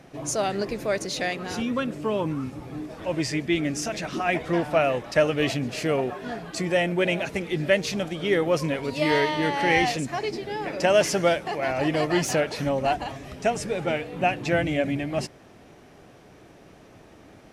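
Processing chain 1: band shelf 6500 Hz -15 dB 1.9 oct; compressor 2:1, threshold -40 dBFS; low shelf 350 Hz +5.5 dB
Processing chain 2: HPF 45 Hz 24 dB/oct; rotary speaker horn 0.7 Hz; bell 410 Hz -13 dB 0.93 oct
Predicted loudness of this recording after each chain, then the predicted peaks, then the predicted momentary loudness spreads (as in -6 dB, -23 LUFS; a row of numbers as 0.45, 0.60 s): -34.0, -31.0 LUFS; -18.0, -11.0 dBFS; 16, 10 LU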